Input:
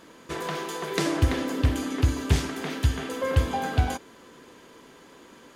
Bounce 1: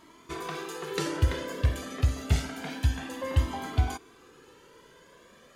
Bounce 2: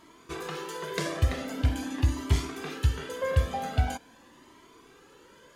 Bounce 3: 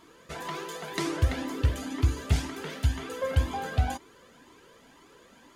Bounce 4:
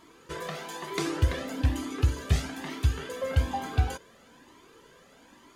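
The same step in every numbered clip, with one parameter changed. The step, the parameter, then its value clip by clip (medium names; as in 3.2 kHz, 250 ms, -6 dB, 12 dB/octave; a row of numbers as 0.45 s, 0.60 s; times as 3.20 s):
Shepard-style flanger, rate: 0.28 Hz, 0.44 Hz, 2 Hz, 1.1 Hz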